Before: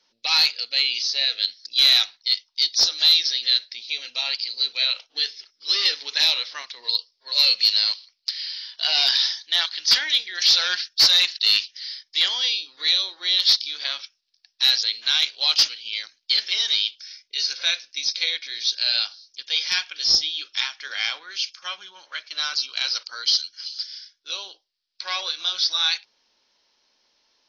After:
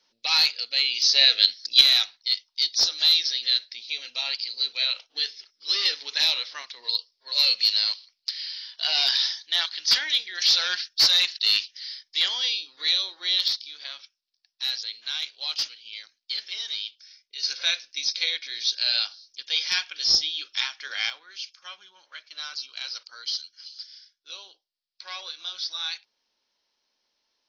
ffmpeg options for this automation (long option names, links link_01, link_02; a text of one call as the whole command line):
ffmpeg -i in.wav -af "asetnsamples=nb_out_samples=441:pad=0,asendcmd='1.02 volume volume 5dB;1.81 volume volume -3dB;13.48 volume volume -10dB;17.43 volume volume -2dB;21.1 volume volume -9.5dB',volume=-2dB" out.wav